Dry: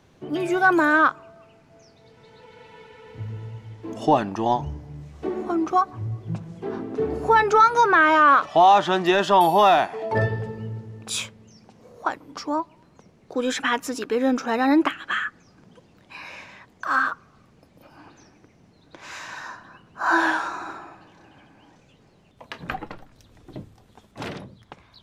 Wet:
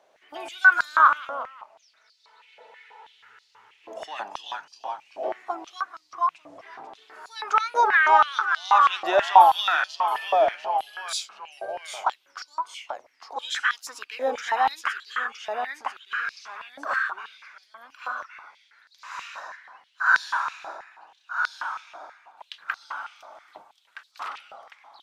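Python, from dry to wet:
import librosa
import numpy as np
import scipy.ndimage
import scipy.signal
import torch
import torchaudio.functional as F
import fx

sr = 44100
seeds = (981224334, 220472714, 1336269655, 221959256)

y = fx.echo_pitch(x, sr, ms=111, semitones=-1, count=3, db_per_echo=-6.0)
y = fx.filter_held_highpass(y, sr, hz=6.2, low_hz=620.0, high_hz=4500.0)
y = F.gain(torch.from_numpy(y), -6.5).numpy()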